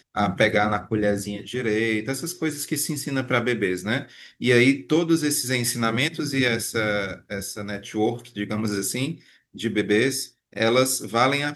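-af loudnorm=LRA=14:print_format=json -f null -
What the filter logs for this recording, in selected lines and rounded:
"input_i" : "-23.4",
"input_tp" : "-3.2",
"input_lra" : "3.2",
"input_thresh" : "-33.6",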